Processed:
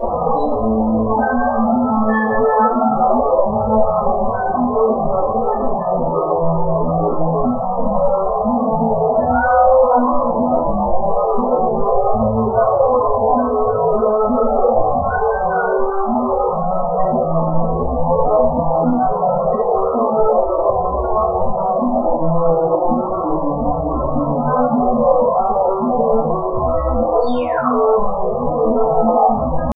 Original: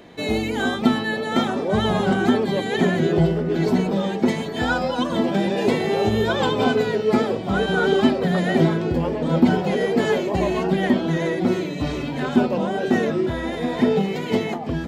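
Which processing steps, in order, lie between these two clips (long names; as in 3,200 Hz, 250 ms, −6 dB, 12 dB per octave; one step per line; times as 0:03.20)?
sign of each sample alone
hum removal 195.8 Hz, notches 7
sound drawn into the spectrogram fall, 0:13.60–0:13.86, 1,000–5,000 Hz −25 dBFS
low-shelf EQ 96 Hz +11.5 dB
brickwall limiter −15 dBFS, peak gain reduction 5 dB
bit reduction 4 bits
flat-topped bell 800 Hz +12 dB
tempo change 0.5×
spectral peaks only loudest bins 16
convolution reverb RT60 0.45 s, pre-delay 3 ms, DRR −9.5 dB
level −15 dB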